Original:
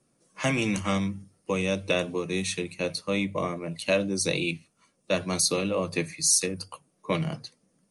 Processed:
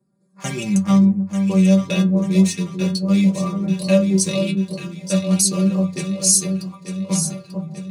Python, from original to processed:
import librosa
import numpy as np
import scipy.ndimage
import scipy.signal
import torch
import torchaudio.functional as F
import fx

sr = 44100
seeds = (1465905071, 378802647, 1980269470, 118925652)

p1 = fx.wiener(x, sr, points=15)
p2 = scipy.signal.sosfilt(scipy.signal.butter(2, 110.0, 'highpass', fs=sr, output='sos'), p1)
p3 = fx.bass_treble(p2, sr, bass_db=13, treble_db=11)
p4 = fx.rider(p3, sr, range_db=4, speed_s=2.0)
p5 = p3 + (p4 * 10.0 ** (1.5 / 20.0))
p6 = fx.stiff_resonator(p5, sr, f0_hz=190.0, decay_s=0.2, stiffness=0.002)
p7 = p6 + fx.echo_alternate(p6, sr, ms=445, hz=1000.0, feedback_pct=71, wet_db=-6.0, dry=0)
y = p7 * 10.0 ** (2.5 / 20.0)